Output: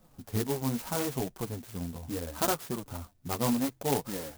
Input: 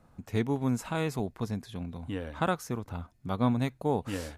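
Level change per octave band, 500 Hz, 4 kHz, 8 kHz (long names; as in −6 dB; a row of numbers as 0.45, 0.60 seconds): −0.5, +4.0, +9.5 decibels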